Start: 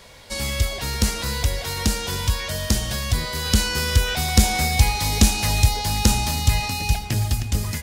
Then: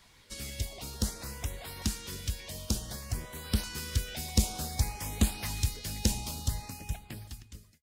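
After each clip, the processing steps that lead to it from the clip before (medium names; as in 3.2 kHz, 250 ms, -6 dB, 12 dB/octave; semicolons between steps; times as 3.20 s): fade out at the end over 1.37 s; LFO notch saw up 0.55 Hz 490–7700 Hz; harmonic-percussive split harmonic -9 dB; trim -8.5 dB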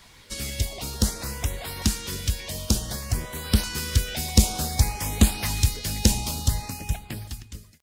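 crackle 16 per s -54 dBFS; trim +8.5 dB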